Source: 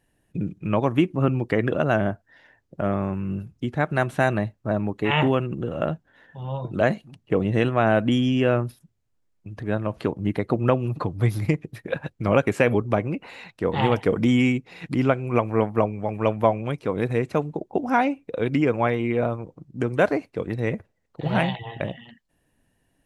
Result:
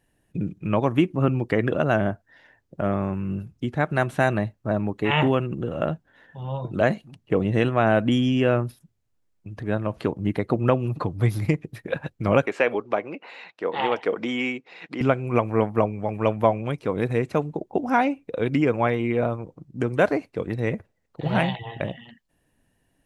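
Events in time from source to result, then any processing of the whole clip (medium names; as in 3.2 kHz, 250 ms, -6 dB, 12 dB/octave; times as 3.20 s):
12.46–15.01 s: band-pass 410–4800 Hz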